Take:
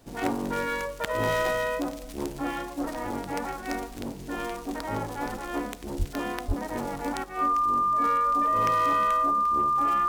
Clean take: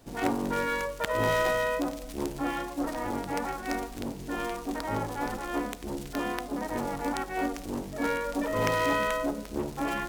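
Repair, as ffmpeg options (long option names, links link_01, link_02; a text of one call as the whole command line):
ffmpeg -i in.wav -filter_complex "[0:a]bandreject=frequency=1200:width=30,asplit=3[link_01][link_02][link_03];[link_01]afade=type=out:start_time=5.98:duration=0.02[link_04];[link_02]highpass=frequency=140:width=0.5412,highpass=frequency=140:width=1.3066,afade=type=in:start_time=5.98:duration=0.02,afade=type=out:start_time=6.1:duration=0.02[link_05];[link_03]afade=type=in:start_time=6.1:duration=0.02[link_06];[link_04][link_05][link_06]amix=inputs=3:normalize=0,asplit=3[link_07][link_08][link_09];[link_07]afade=type=out:start_time=6.47:duration=0.02[link_10];[link_08]highpass=frequency=140:width=0.5412,highpass=frequency=140:width=1.3066,afade=type=in:start_time=6.47:duration=0.02,afade=type=out:start_time=6.59:duration=0.02[link_11];[link_09]afade=type=in:start_time=6.59:duration=0.02[link_12];[link_10][link_11][link_12]amix=inputs=3:normalize=0,asetnsamples=nb_out_samples=441:pad=0,asendcmd='7.24 volume volume 4.5dB',volume=0dB" out.wav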